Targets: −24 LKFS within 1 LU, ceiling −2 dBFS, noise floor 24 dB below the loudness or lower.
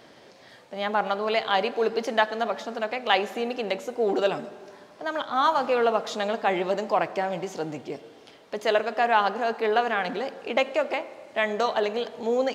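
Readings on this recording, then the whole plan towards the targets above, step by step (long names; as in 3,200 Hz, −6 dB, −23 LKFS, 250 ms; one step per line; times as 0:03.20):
integrated loudness −26.0 LKFS; sample peak −6.0 dBFS; target loudness −24.0 LKFS
→ level +2 dB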